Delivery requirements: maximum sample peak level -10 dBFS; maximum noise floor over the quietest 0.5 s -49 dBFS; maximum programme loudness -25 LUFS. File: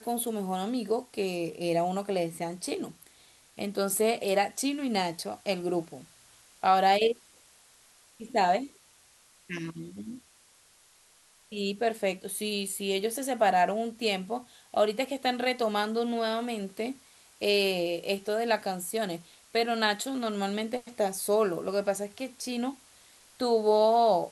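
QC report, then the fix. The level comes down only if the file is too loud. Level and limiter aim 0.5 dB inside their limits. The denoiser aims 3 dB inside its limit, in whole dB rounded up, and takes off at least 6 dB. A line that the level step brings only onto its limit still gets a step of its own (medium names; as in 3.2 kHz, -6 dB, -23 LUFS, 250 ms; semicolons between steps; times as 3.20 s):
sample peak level -11.5 dBFS: pass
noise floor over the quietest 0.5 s -61 dBFS: pass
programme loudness -29.0 LUFS: pass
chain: none needed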